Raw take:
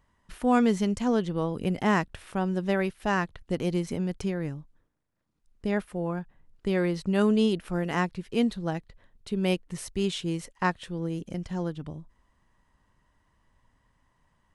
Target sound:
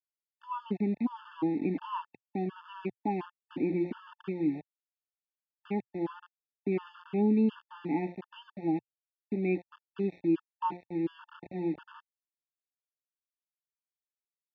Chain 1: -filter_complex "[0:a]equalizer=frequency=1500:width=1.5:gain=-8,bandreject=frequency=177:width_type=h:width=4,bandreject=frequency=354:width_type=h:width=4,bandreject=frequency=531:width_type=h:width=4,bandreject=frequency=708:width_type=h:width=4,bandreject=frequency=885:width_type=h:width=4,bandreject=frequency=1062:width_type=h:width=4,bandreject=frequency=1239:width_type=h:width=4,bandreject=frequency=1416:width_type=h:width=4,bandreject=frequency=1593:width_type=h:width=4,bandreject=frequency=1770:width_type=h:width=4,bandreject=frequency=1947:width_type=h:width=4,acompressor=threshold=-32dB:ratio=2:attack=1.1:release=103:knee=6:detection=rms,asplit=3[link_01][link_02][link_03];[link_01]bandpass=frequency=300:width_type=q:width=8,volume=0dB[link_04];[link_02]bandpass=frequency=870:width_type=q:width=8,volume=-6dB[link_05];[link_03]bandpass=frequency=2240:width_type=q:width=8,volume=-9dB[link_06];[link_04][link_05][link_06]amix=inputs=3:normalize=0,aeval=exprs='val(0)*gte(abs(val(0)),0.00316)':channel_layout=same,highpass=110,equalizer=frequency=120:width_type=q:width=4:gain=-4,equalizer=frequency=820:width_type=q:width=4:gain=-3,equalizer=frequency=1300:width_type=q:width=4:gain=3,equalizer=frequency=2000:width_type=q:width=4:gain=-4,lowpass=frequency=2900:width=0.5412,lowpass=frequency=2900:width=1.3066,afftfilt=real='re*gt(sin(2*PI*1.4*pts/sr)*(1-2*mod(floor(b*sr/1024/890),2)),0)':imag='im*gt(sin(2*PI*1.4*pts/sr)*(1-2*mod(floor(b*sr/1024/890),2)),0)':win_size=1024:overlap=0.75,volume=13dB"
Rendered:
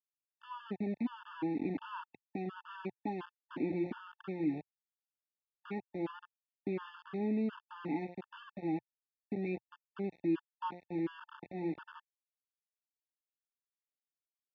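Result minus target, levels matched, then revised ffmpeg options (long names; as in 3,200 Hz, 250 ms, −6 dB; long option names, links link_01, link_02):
downward compressor: peak gain reduction +9.5 dB
-filter_complex "[0:a]asplit=3[link_01][link_02][link_03];[link_01]bandpass=frequency=300:width_type=q:width=8,volume=0dB[link_04];[link_02]bandpass=frequency=870:width_type=q:width=8,volume=-6dB[link_05];[link_03]bandpass=frequency=2240:width_type=q:width=8,volume=-9dB[link_06];[link_04][link_05][link_06]amix=inputs=3:normalize=0,equalizer=frequency=1500:width=1.5:gain=-8,bandreject=frequency=177:width_type=h:width=4,bandreject=frequency=354:width_type=h:width=4,bandreject=frequency=531:width_type=h:width=4,bandreject=frequency=708:width_type=h:width=4,bandreject=frequency=885:width_type=h:width=4,bandreject=frequency=1062:width_type=h:width=4,bandreject=frequency=1239:width_type=h:width=4,bandreject=frequency=1416:width_type=h:width=4,bandreject=frequency=1593:width_type=h:width=4,bandreject=frequency=1770:width_type=h:width=4,bandreject=frequency=1947:width_type=h:width=4,aeval=exprs='val(0)*gte(abs(val(0)),0.00316)':channel_layout=same,highpass=110,equalizer=frequency=120:width_type=q:width=4:gain=-4,equalizer=frequency=820:width_type=q:width=4:gain=-3,equalizer=frequency=1300:width_type=q:width=4:gain=3,equalizer=frequency=2000:width_type=q:width=4:gain=-4,lowpass=frequency=2900:width=0.5412,lowpass=frequency=2900:width=1.3066,afftfilt=real='re*gt(sin(2*PI*1.4*pts/sr)*(1-2*mod(floor(b*sr/1024/890),2)),0)':imag='im*gt(sin(2*PI*1.4*pts/sr)*(1-2*mod(floor(b*sr/1024/890),2)),0)':win_size=1024:overlap=0.75,volume=13dB"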